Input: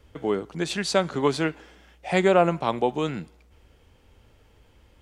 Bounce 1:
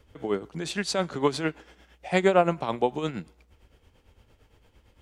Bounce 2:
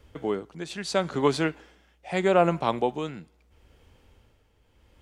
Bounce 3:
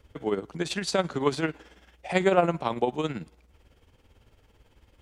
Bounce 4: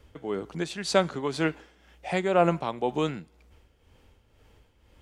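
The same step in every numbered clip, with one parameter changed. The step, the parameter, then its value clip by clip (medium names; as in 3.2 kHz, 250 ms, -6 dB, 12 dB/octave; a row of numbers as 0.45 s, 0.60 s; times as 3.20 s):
tremolo, rate: 8.8 Hz, 0.77 Hz, 18 Hz, 2 Hz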